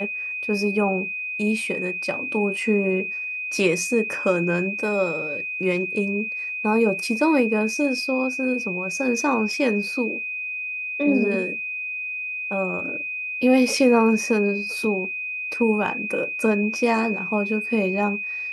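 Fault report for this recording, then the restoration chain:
whistle 2,500 Hz −27 dBFS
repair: notch filter 2,500 Hz, Q 30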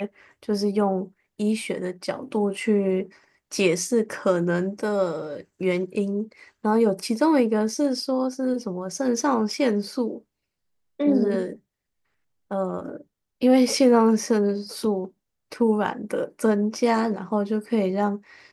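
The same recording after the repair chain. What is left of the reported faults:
none of them is left

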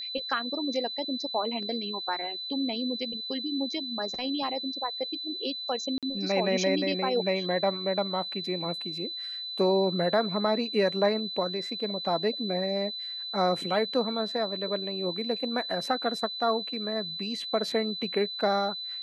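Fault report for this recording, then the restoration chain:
whistle 4,000 Hz −34 dBFS
0:05.98–0:06.03: drop-out 47 ms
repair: notch filter 4,000 Hz, Q 30
repair the gap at 0:05.98, 47 ms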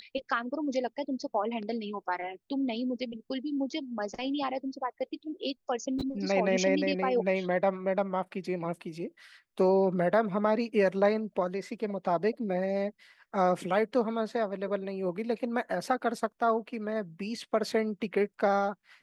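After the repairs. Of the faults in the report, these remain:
none of them is left

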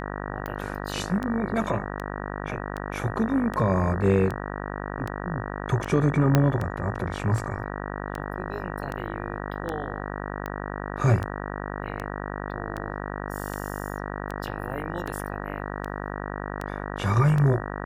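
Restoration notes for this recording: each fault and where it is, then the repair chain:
mains buzz 50 Hz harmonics 38 −33 dBFS
scratch tick 78 rpm −18 dBFS
0:06.35: click −6 dBFS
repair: click removal
hum removal 50 Hz, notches 38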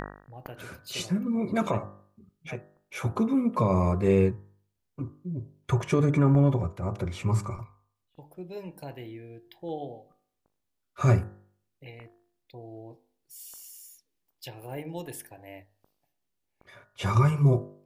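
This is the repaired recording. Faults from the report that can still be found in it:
0:06.35: click

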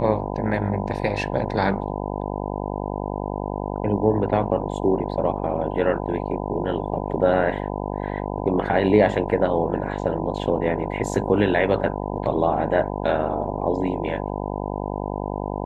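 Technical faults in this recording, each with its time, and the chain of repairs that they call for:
mains buzz 50 Hz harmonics 20 −28 dBFS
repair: hum removal 50 Hz, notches 20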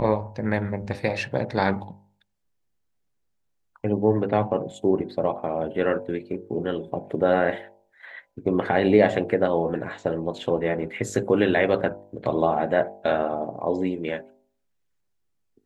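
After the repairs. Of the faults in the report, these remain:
none of them is left

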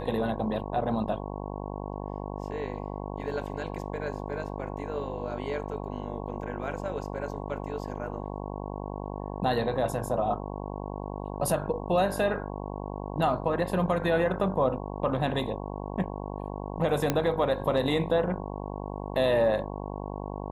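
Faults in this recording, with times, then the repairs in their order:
mains buzz 50 Hz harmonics 22 −36 dBFS
0:17.10: click −10 dBFS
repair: click removal
hum removal 50 Hz, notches 22

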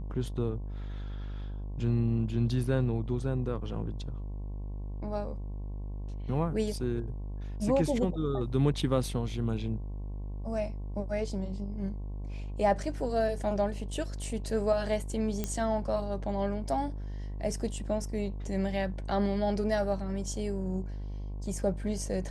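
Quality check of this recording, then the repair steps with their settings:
mains buzz 50 Hz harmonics 22 −37 dBFS
0:15.44: click −17 dBFS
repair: click removal
hum removal 50 Hz, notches 22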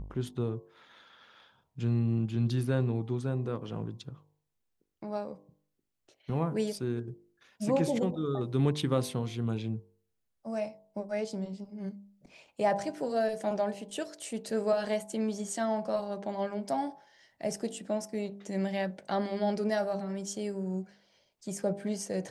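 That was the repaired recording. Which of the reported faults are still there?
none of them is left

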